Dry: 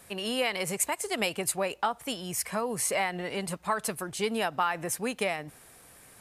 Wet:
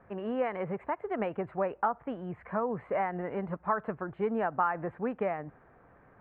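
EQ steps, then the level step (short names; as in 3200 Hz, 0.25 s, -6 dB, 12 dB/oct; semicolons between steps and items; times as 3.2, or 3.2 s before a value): inverse Chebyshev low-pass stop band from 5200 Hz, stop band 60 dB; 0.0 dB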